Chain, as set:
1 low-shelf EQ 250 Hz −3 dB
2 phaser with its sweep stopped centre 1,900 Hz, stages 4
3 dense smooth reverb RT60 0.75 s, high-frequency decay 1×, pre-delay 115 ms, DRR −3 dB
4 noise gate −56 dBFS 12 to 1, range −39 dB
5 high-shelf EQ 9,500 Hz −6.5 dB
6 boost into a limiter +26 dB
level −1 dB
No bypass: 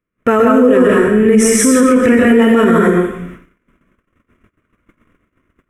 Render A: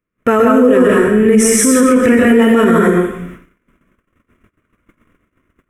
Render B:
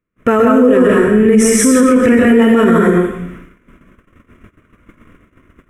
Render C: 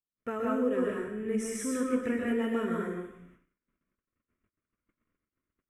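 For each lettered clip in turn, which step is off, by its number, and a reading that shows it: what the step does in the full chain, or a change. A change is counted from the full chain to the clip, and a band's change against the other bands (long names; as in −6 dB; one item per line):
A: 5, 8 kHz band +1.5 dB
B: 1, 125 Hz band +2.0 dB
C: 6, change in crest factor +6.5 dB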